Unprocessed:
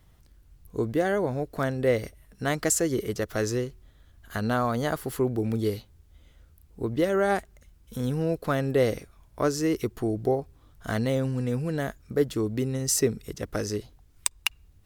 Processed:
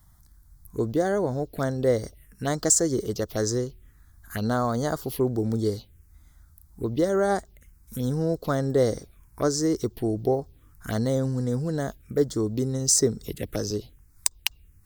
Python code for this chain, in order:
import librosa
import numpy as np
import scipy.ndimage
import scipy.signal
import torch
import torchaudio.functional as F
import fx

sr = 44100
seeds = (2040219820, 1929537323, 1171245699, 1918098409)

y = fx.high_shelf(x, sr, hz=5100.0, db=8.0)
y = fx.env_phaser(y, sr, low_hz=440.0, high_hz=2600.0, full_db=-24.0)
y = fx.band_squash(y, sr, depth_pct=40, at=(13.21, 13.71))
y = F.gain(torch.from_numpy(y), 1.5).numpy()